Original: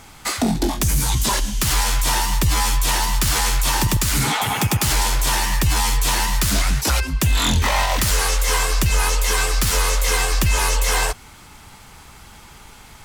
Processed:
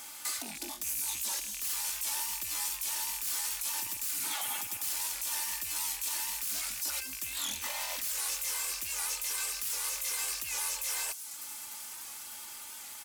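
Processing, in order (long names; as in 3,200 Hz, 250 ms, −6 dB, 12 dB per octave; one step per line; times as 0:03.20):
loose part that buzzes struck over −21 dBFS, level −16 dBFS
downward compressor 2 to 1, threshold −38 dBFS, peak gain reduction 13 dB
RIAA equalisation recording
comb filter 3.4 ms, depth 44%
delay with a high-pass on its return 300 ms, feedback 82%, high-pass 5,100 Hz, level −15 dB
brickwall limiter −15.5 dBFS, peak gain reduction 11 dB
low-shelf EQ 100 Hz −7.5 dB
wow of a warped record 78 rpm, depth 100 cents
level −8.5 dB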